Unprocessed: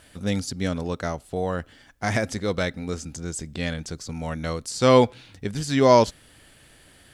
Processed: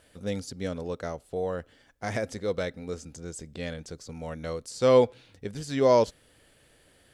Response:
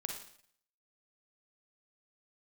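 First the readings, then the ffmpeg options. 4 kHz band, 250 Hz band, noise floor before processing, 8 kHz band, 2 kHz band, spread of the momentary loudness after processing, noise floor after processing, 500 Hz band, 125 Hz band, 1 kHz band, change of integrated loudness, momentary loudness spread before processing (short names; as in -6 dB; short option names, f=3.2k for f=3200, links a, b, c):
-8.5 dB, -7.5 dB, -54 dBFS, -8.5 dB, -8.5 dB, 18 LU, -62 dBFS, -2.5 dB, -8.5 dB, -7.5 dB, -4.0 dB, 15 LU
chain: -af "equalizer=f=490:w=2.1:g=7.5,volume=-8.5dB"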